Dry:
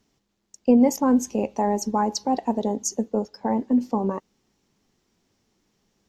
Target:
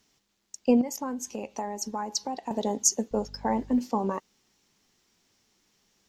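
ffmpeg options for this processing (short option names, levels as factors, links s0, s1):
-filter_complex "[0:a]asettb=1/sr,asplit=3[s0][s1][s2];[s0]atrim=end=0.814[s3];[s1]atrim=start=0.81:end=2.51,asetpts=PTS-STARTPTS,afade=t=in:d=0.004:c=qsin,afade=t=out:st=1.696:d=0.004:c=qsin,acompressor=threshold=0.0398:ratio=5[s4];[s2]atrim=start=2.506[s5];[s3][s4]acrossfade=d=0.004:c1=hsin:c2=qsin[s6];[s6][s5]acrossfade=d=0.004:c1=qsin:c2=hsin,tiltshelf=f=970:g=-5.5,asettb=1/sr,asplit=3[s7][s8][s9];[s7]atrim=end=3.114[s10];[s8]atrim=start=3.11:end=3.79,asetpts=PTS-STARTPTS,afade=t=in:d=0.004:c=qsin,afade=t=out:st=0.676:d=0.004:c=qsin,aeval=exprs='val(0)+0.00562*(sin(2*PI*50*n/s)+sin(2*PI*2*50*n/s)/2+sin(2*PI*3*50*n/s)/3+sin(2*PI*4*50*n/s)/4+sin(2*PI*5*50*n/s)/5)':c=same[s11];[s9]atrim=start=3.786[s12];[s10][s11]acrossfade=d=0.004:c1=hsin:c2=qsin[s13];[s13][s12]acrossfade=d=0.004:c1=qsin:c2=hsin"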